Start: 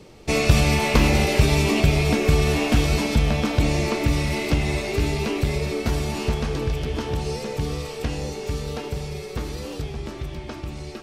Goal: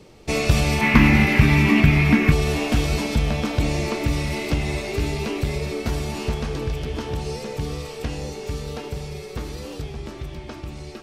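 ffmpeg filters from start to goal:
-filter_complex "[0:a]asettb=1/sr,asplit=3[a][b][c];[a]atrim=end=0.814[d];[b]atrim=start=0.81:end=2.32,asetpts=PTS-STARTPTS,afade=t=in:d=0.004:c=qsin,afade=t=out:st=1.506:d=0.004:c=qsin,equalizer=f=125:t=o:w=1:g=4,equalizer=f=250:t=o:w=1:g=11,equalizer=f=500:t=o:w=1:g=-10,equalizer=f=1k:t=o:w=1:g=4,equalizer=f=2k:t=o:w=1:g=11,equalizer=f=4k:t=o:w=1:g=-4,equalizer=f=8k:t=o:w=1:g=-8[e];[c]atrim=start=2.316[f];[d][e]acrossfade=d=0.004:c1=hsin:c2=qsin[g];[g][f]acrossfade=d=0.004:c1=qsin:c2=hsin,volume=-1.5dB"

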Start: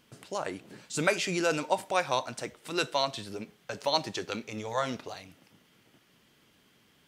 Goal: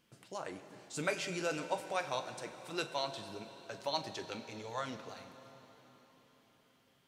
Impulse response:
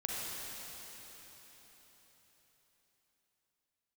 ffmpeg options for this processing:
-filter_complex "[0:a]flanger=delay=5.8:depth=1.7:regen=-61:speed=0.36:shape=sinusoidal,asplit=2[a][b];[1:a]atrim=start_sample=2205,adelay=42[c];[b][c]afir=irnorm=-1:irlink=0,volume=-13dB[d];[a][d]amix=inputs=2:normalize=0,volume=-4.5dB"

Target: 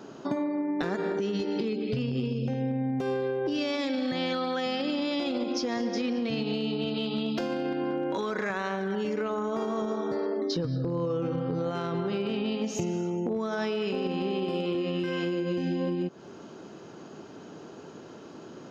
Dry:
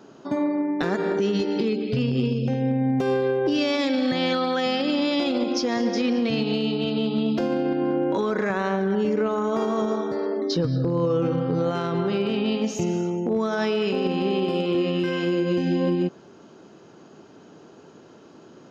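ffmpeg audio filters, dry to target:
-filter_complex "[0:a]asettb=1/sr,asplit=3[a][b][c];[a]atrim=end=6.944[d];[b]atrim=start=6.94:end=9.3,asetpts=PTS-STARTPTS,afade=t=in:d=0.004:c=qsin,afade=t=out:st=2.356:d=0.004:c=qsin,tiltshelf=f=970:g=-4[e];[c]atrim=start=9.296[f];[d][e]acrossfade=d=0.004:c1=hsin:c2=qsin[g];[g][f]acrossfade=d=0.004:c1=qsin:c2=hsin,acompressor=threshold=-30dB:ratio=6,volume=3dB"

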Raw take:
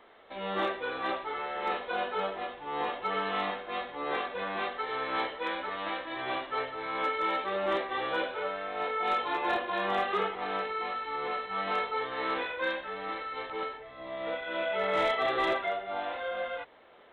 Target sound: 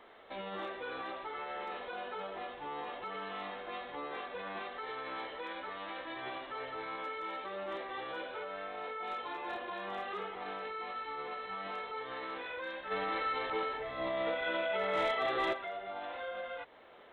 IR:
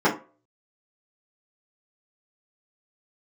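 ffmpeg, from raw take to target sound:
-filter_complex "[0:a]alimiter=level_in=9dB:limit=-24dB:level=0:latency=1:release=165,volume=-9dB,asplit=3[a][b][c];[a]afade=t=out:st=12.9:d=0.02[d];[b]acontrast=74,afade=t=in:st=12.9:d=0.02,afade=t=out:st=15.52:d=0.02[e];[c]afade=t=in:st=15.52:d=0.02[f];[d][e][f]amix=inputs=3:normalize=0"

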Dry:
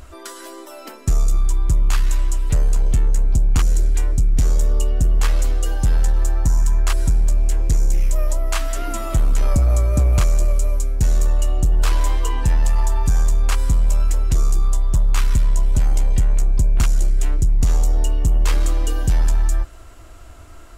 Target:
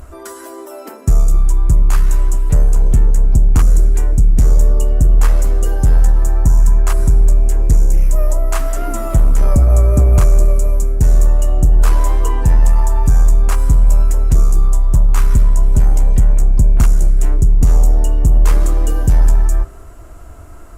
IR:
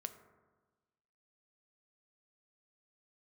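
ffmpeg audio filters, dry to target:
-filter_complex "[0:a]equalizer=f=3.6k:t=o:w=1.8:g=-11.5,asplit=2[a][b];[1:a]atrim=start_sample=2205[c];[b][c]afir=irnorm=-1:irlink=0,volume=5dB[d];[a][d]amix=inputs=2:normalize=0,volume=-1dB" -ar 48000 -c:a libopus -b:a 64k

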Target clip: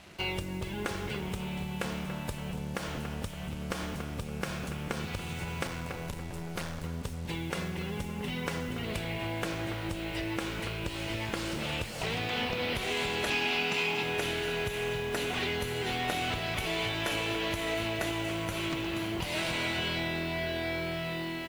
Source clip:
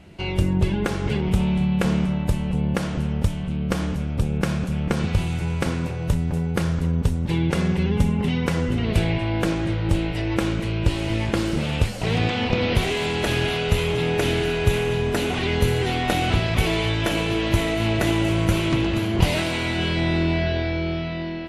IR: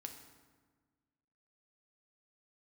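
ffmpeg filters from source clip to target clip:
-filter_complex "[0:a]asettb=1/sr,asplit=3[a][b][c];[a]atrim=end=5.674[d];[b]atrim=start=5.67:end=6.84,asetpts=PTS-STARTPTS,afade=t=in:d=0.004:c=qsin,afade=t=out:st=1.166:d=0.004:c=qsin,aeval=exprs='(tanh(11.2*val(0)+0.75)-tanh(0.75))/11.2':c=same[e];[c]atrim=start=6.836[f];[d][e]acrossfade=d=0.004:c1=hsin:c2=qsin[g];[g][f]acrossfade=d=0.004:c1=qsin:c2=hsin,asettb=1/sr,asplit=3[h][i][j];[h]atrim=end=13.304[k];[i]atrim=start=13.3:end=14.03,asetpts=PTS-STARTPTS,afade=t=in:d=0.004:c=qsin,afade=t=out:st=0.726:d=0.004:c=qsin,highpass=f=150:w=0.5412,highpass=f=150:w=1.3066,equalizer=f=240:t=q:w=4:g=10,equalizer=f=560:t=q:w=4:g=-7,equalizer=f=840:t=q:w=4:g=8,equalizer=f=2.5k:t=q:w=4:g=8,equalizer=f=5k:t=q:w=4:g=6,lowpass=f=8.1k:w=0.5412,lowpass=f=8.1k:w=1.3066[l];[j]atrim=start=14.026[m];[k][l]acrossfade=d=0.004:c1=hsin:c2=qsin[n];[n][m]acrossfade=d=0.004:c1=qsin:c2=hsin,asplit=2[o][p];[p]adelay=284,lowpass=f=2.3k:p=1,volume=-10dB,asplit=2[q][r];[r]adelay=284,lowpass=f=2.3k:p=1,volume=0.47,asplit=2[s][t];[t]adelay=284,lowpass=f=2.3k:p=1,volume=0.47,asplit=2[u][v];[v]adelay=284,lowpass=f=2.3k:p=1,volume=0.47,asplit=2[w][x];[x]adelay=284,lowpass=f=2.3k:p=1,volume=0.47[y];[o][q][s][u][w][y]amix=inputs=6:normalize=0,acompressor=threshold=-24dB:ratio=6,acrusher=bits=7:mix=0:aa=0.5,lowshelf=f=410:g=-11"

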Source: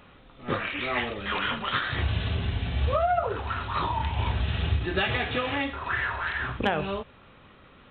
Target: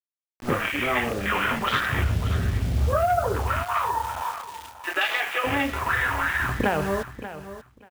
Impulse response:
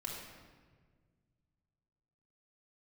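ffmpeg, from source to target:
-filter_complex "[0:a]asettb=1/sr,asplit=3[a][b][c];[a]atrim=end=3.634[d];[b]atrim=start=3.63:end=5.44,asetpts=PTS-STARTPTS,afade=t=in:d=0.004:c=qsin,afade=t=out:st=1.806:d=0.004:c=qsin,highpass=780[e];[c]atrim=start=5.436[f];[d][e]acrossfade=d=0.004:c1=hsin:c2=qsin[g];[g][f]acrossfade=d=0.004:c1=qsin:c2=hsin,afwtdn=0.0224,acompressor=threshold=-32dB:ratio=2,acrusher=bits=7:mix=0:aa=0.000001,aecho=1:1:585|1170:0.224|0.0381,volume=8.5dB"

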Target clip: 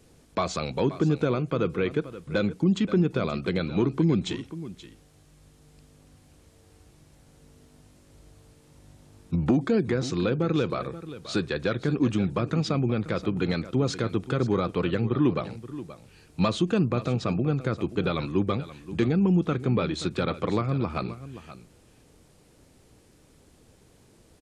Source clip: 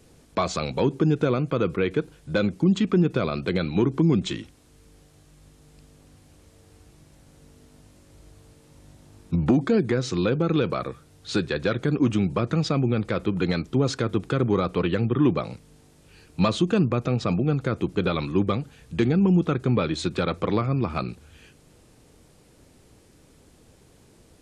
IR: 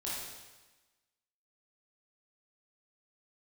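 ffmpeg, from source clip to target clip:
-af "aecho=1:1:528:0.188,volume=-2.5dB"

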